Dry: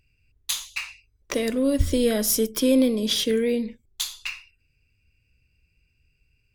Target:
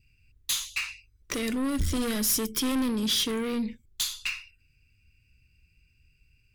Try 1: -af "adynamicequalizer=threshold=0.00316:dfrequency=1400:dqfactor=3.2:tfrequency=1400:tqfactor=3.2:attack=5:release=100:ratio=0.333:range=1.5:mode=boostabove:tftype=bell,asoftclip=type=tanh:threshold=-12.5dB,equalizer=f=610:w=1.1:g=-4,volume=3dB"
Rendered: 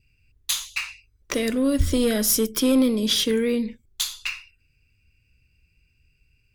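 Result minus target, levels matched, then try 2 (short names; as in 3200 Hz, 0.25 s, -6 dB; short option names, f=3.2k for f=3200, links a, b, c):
soft clip: distortion -12 dB; 500 Hz band +5.0 dB
-af "adynamicequalizer=threshold=0.00316:dfrequency=1400:dqfactor=3.2:tfrequency=1400:tqfactor=3.2:attack=5:release=100:ratio=0.333:range=1.5:mode=boostabove:tftype=bell,asoftclip=type=tanh:threshold=-24dB,equalizer=f=610:w=1.1:g=-11.5,volume=3dB"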